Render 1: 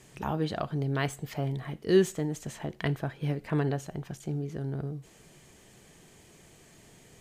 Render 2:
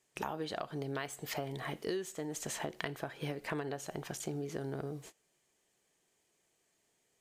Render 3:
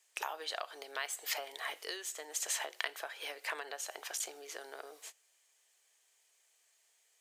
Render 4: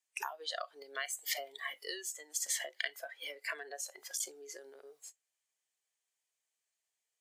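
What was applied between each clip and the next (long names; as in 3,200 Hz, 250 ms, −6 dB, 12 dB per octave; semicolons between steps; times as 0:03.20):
noise gate −49 dBFS, range −25 dB; bass and treble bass −13 dB, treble +3 dB; downward compressor 16 to 1, threshold −39 dBFS, peak gain reduction 20 dB; level +5 dB
high-pass filter 480 Hz 24 dB per octave; tilt shelving filter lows −6.5 dB
noise reduction from a noise print of the clip's start 17 dB; level +1 dB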